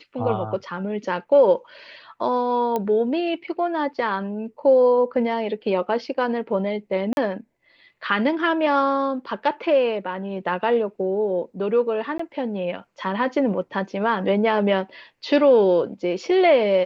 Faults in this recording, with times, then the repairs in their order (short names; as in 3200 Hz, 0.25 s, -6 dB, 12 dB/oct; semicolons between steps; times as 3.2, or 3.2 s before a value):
2.76 pop -12 dBFS
7.13–7.17 gap 41 ms
12.18–12.19 gap 14 ms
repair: de-click; interpolate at 7.13, 41 ms; interpolate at 12.18, 14 ms